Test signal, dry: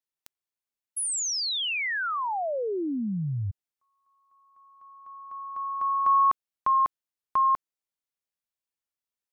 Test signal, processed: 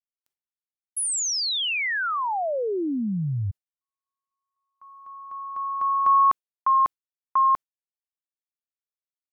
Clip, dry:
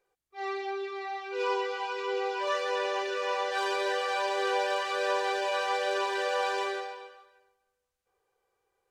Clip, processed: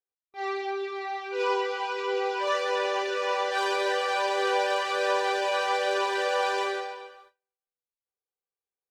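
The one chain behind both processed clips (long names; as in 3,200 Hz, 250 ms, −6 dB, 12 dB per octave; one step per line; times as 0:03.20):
noise gate with hold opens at −49 dBFS, closes at −54 dBFS, hold 20 ms, range −28 dB
level +3 dB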